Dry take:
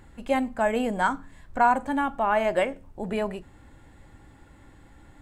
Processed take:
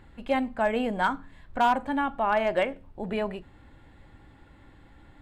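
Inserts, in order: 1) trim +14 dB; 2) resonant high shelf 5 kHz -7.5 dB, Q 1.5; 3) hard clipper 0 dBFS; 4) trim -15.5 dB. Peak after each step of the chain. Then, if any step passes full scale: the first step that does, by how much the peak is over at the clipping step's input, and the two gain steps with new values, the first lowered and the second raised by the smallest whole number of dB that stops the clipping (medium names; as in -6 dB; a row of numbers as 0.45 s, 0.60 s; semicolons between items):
+5.0 dBFS, +5.5 dBFS, 0.0 dBFS, -15.5 dBFS; step 1, 5.5 dB; step 1 +8 dB, step 4 -9.5 dB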